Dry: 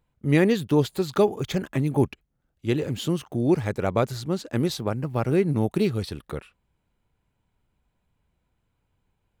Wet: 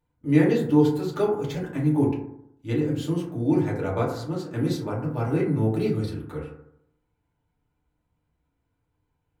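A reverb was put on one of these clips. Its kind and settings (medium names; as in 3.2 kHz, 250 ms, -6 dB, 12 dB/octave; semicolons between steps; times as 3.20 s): FDN reverb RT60 0.75 s, low-frequency decay 1.05×, high-frequency decay 0.3×, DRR -6 dB; trim -9.5 dB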